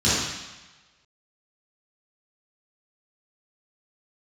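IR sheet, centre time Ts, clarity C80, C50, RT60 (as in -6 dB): 93 ms, 1.0 dB, -2.5 dB, 1.1 s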